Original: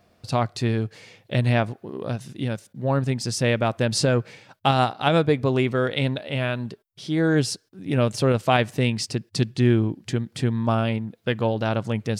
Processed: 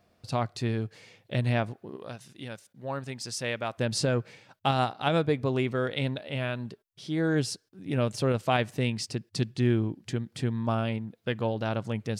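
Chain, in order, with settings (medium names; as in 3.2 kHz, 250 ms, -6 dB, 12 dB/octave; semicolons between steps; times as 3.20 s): 1.96–3.78 s: bass shelf 450 Hz -10.5 dB; trim -6 dB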